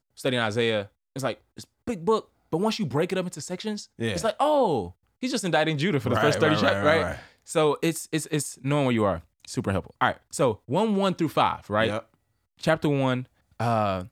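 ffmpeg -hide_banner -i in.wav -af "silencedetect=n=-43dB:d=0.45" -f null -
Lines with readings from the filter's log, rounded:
silence_start: 12.02
silence_end: 12.59 | silence_duration: 0.57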